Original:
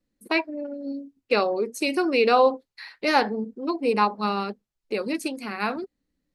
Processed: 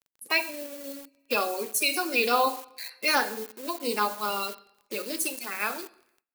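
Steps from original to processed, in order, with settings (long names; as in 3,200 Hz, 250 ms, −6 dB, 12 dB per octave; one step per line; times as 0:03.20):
spectral magnitudes quantised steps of 30 dB
coupled-rooms reverb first 0.61 s, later 2.4 s, from −26 dB, DRR 9.5 dB
noise gate with hold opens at −52 dBFS
in parallel at −8.5 dB: bit reduction 6 bits
on the sum: RIAA equalisation recording
surface crackle 17 per second −40 dBFS
high-shelf EQ 9,600 Hz +4 dB
level −6.5 dB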